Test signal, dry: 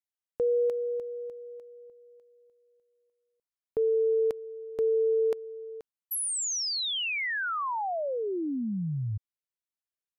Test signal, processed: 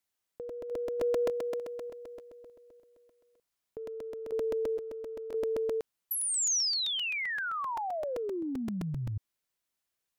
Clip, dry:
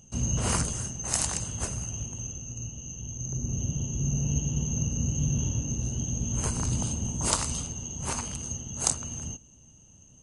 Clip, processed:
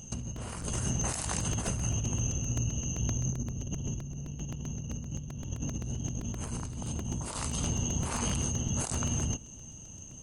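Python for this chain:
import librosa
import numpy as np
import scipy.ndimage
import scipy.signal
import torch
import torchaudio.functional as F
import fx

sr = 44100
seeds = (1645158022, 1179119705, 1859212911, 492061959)

y = fx.dynamic_eq(x, sr, hz=6200.0, q=1.1, threshold_db=-46.0, ratio=4.0, max_db=-6)
y = fx.over_compress(y, sr, threshold_db=-37.0, ratio=-1.0)
y = fx.buffer_crackle(y, sr, first_s=0.36, period_s=0.13, block=128, kind='repeat')
y = F.gain(torch.from_numpy(y), 3.0).numpy()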